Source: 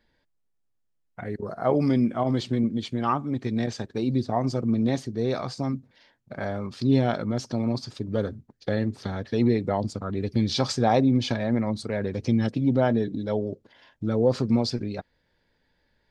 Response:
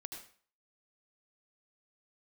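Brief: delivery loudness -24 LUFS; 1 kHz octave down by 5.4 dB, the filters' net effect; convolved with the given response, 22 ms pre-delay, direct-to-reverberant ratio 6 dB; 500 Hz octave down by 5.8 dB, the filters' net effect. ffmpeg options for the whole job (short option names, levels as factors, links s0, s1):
-filter_complex "[0:a]equalizer=f=500:t=o:g=-6,equalizer=f=1000:t=o:g=-5,asplit=2[s0][s1];[1:a]atrim=start_sample=2205,adelay=22[s2];[s1][s2]afir=irnorm=-1:irlink=0,volume=0.75[s3];[s0][s3]amix=inputs=2:normalize=0,volume=1.33"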